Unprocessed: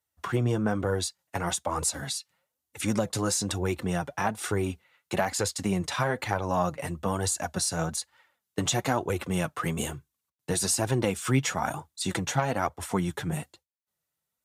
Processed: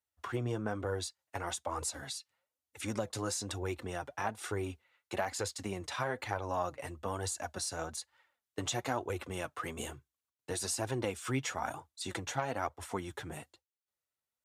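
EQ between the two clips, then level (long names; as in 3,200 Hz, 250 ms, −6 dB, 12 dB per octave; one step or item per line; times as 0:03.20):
parametric band 170 Hz −15 dB 0.45 octaves
high-shelf EQ 8,900 Hz −5.5 dB
−7.0 dB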